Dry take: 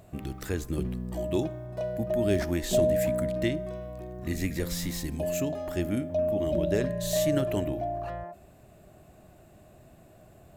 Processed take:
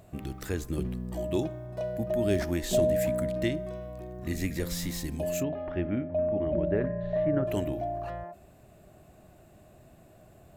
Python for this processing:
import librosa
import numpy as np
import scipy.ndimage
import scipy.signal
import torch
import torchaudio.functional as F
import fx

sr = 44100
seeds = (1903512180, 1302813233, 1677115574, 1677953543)

y = fx.lowpass(x, sr, hz=fx.line((5.42, 2900.0), (7.46, 1700.0)), slope=24, at=(5.42, 7.46), fade=0.02)
y = F.gain(torch.from_numpy(y), -1.0).numpy()